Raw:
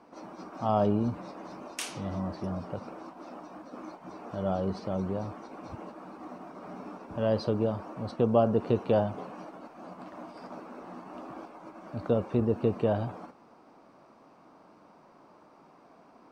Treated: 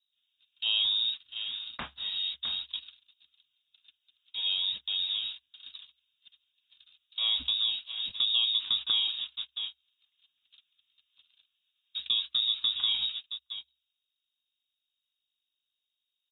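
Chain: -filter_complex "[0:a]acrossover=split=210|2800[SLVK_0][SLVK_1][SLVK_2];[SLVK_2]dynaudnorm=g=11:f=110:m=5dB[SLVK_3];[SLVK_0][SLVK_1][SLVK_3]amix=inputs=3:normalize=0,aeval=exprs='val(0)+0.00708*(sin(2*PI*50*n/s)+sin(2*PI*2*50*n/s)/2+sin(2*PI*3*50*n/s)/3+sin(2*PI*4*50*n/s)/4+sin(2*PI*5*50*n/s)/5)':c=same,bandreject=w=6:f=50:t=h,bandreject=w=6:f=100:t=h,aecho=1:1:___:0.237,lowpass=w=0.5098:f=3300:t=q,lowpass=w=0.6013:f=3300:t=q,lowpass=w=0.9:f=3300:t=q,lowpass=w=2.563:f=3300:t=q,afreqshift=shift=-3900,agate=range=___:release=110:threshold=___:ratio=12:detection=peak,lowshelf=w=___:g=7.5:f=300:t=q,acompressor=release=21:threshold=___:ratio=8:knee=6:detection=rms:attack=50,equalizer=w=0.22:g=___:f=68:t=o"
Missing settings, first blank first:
662, -34dB, -38dB, 1.5, -28dB, 13.5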